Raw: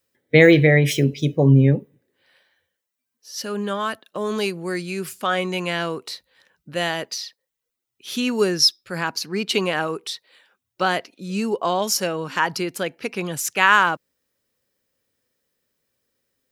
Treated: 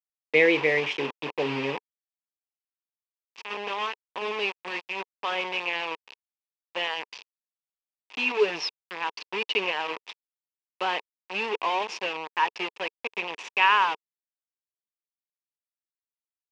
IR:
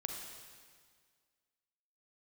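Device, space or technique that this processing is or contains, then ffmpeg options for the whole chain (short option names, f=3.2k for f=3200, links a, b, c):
hand-held game console: -filter_complex "[0:a]asettb=1/sr,asplit=3[a][b][c];[a]atrim=end=8.174[d];[b]atrim=start=8.17:end=8.6,asetpts=PTS-STARTPTS,afade=t=in:d=0.004:c=qsin,afade=t=out:st=0.426:d=0.004:c=qsin,aecho=1:1:6.9:0.88,atrim=end_sample=18963[e];[c]atrim=start=8.596[f];[d][e]acrossfade=d=0.004:c1=hsin:c2=qsin[g];[g][f]acrossfade=d=0.004:c1=qsin:c2=hsin,acrusher=bits=3:mix=0:aa=0.000001,highpass=420,equalizer=f=440:t=q:w=4:g=4,equalizer=f=640:t=q:w=4:g=-5,equalizer=f=950:t=q:w=4:g=8,equalizer=f=1.4k:t=q:w=4:g=-7,equalizer=f=2.6k:t=q:w=4:g=10,equalizer=f=4.1k:t=q:w=4:g=-6,lowpass=f=4.3k:w=0.5412,lowpass=f=4.3k:w=1.3066,volume=-7dB"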